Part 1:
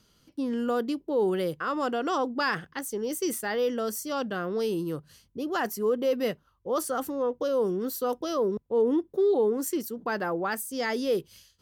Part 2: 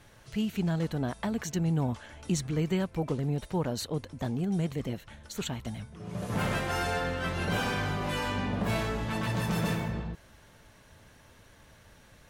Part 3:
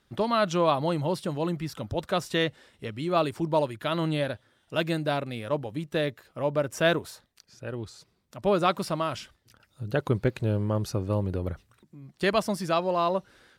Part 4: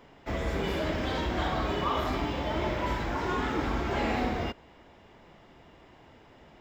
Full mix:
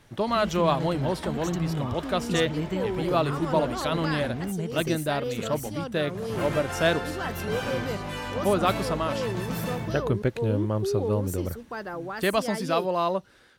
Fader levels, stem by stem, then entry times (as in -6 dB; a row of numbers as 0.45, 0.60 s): -5.5, -2.0, 0.0, -10.5 dB; 1.65, 0.00, 0.00, 0.00 s